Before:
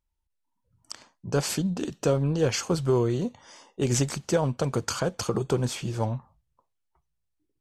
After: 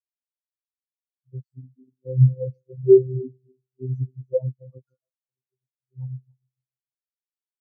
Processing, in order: backward echo that repeats 147 ms, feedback 68%, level -9 dB; 4.97–5.92 s: feedback comb 110 Hz, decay 0.83 s, harmonics all, mix 90%; robot voice 129 Hz; in parallel at +1 dB: peak limiter -15.5 dBFS, peak gain reduction 8.5 dB; on the sum: spectral contrast expander 4:1

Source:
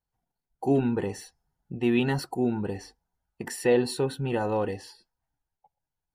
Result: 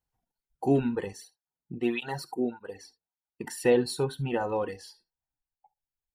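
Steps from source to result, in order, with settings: reverb removal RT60 1.6 s; reverberation, pre-delay 3 ms, DRR 16 dB; 1.13–3.57 s: cancelling through-zero flanger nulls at 1.7 Hz, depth 1.8 ms

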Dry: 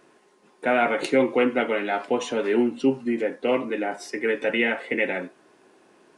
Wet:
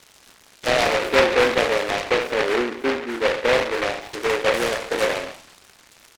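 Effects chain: spectral sustain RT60 0.60 s; crackle 370 per s -35 dBFS; feedback delay 166 ms, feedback 25%, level -18 dB; auto-wah 530–2400 Hz, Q 2.4, down, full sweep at -24 dBFS; peaking EQ 2.1 kHz +6 dB 2.1 oct; delay time shaken by noise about 1.4 kHz, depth 0.21 ms; trim +4 dB

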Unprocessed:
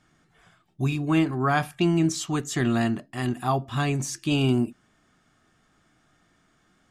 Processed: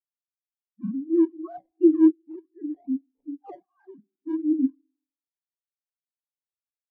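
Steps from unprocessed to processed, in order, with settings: formants replaced by sine waves; low-pass 1.1 kHz 6 dB/octave; spring tank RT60 1.4 s, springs 52 ms, DRR 12.5 dB; decimation with a swept rate 19×, swing 160% 2.6 Hz; granulator, spray 22 ms, pitch spread up and down by 0 st; spectral contrast expander 2.5:1; trim +5 dB

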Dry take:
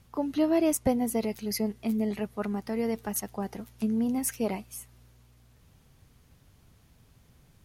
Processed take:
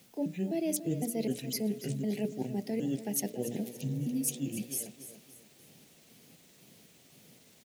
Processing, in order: pitch shift switched off and on -8.5 st, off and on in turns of 254 ms; high-pass 170 Hz 24 dB/octave; hum notches 60/120/180/240/300/360/420/480/540/600 Hz; reverse; compression 6:1, threshold -37 dBFS, peak gain reduction 15.5 dB; reverse; Butterworth band-stop 1.2 kHz, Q 0.85; word length cut 12-bit, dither triangular; feedback delay 286 ms, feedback 39%, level -13 dB; spectral replace 3.77–4.60 s, 360–2300 Hz; trim +7.5 dB

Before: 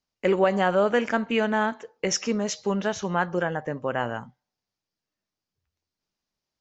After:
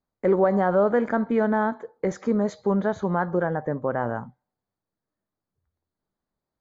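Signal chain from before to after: in parallel at -0.5 dB: peak limiter -18.5 dBFS, peak gain reduction 10.5 dB; on the sum: boxcar filter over 16 samples; trim -1.5 dB

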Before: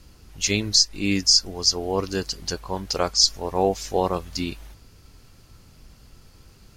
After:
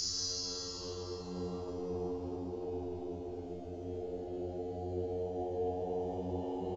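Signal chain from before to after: resampled via 16 kHz; Paulstretch 32×, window 0.10 s, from 1.71 s; feedback comb 90 Hz, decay 1.1 s, harmonics all, mix 90%

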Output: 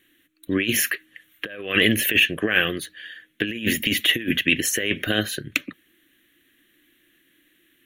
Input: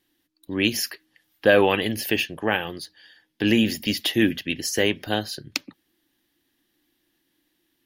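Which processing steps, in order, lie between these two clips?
compressor with a negative ratio -25 dBFS, ratio -0.5; overdrive pedal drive 8 dB, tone 6.1 kHz, clips at -4 dBFS; static phaser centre 2.1 kHz, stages 4; trim +6.5 dB

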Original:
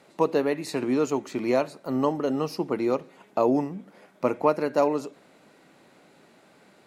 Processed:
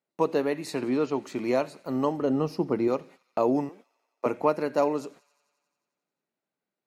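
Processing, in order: 2.22–2.88 s: tilt EQ -2 dB/octave; 3.69–4.26 s: high-pass 360 Hz 24 dB/octave; gate -45 dBFS, range -31 dB; 0.74–1.23 s: steep low-pass 5.3 kHz; feedback echo behind a high-pass 89 ms, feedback 73%, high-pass 2.4 kHz, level -20 dB; trim -2 dB

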